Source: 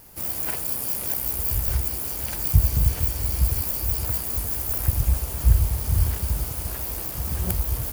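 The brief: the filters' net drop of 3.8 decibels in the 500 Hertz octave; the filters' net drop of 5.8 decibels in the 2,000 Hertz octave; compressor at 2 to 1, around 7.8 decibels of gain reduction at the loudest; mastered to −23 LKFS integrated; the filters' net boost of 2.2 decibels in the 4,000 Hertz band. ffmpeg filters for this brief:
ffmpeg -i in.wav -af "equalizer=frequency=500:width_type=o:gain=-4.5,equalizer=frequency=2000:width_type=o:gain=-9,equalizer=frequency=4000:width_type=o:gain=5,acompressor=threshold=-25dB:ratio=2,volume=4dB" out.wav

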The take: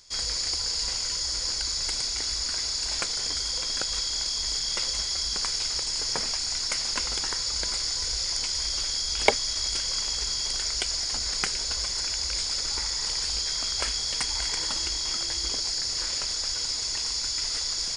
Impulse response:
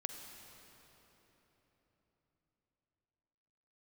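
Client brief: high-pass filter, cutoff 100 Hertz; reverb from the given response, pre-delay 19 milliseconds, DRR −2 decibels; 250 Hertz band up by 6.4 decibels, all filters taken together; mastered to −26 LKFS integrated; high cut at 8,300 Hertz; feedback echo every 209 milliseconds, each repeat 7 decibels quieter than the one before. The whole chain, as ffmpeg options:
-filter_complex "[0:a]highpass=100,lowpass=8300,equalizer=frequency=250:width_type=o:gain=8.5,aecho=1:1:209|418|627|836|1045:0.447|0.201|0.0905|0.0407|0.0183,asplit=2[link_01][link_02];[1:a]atrim=start_sample=2205,adelay=19[link_03];[link_02][link_03]afir=irnorm=-1:irlink=0,volume=3dB[link_04];[link_01][link_04]amix=inputs=2:normalize=0,volume=-4.5dB"

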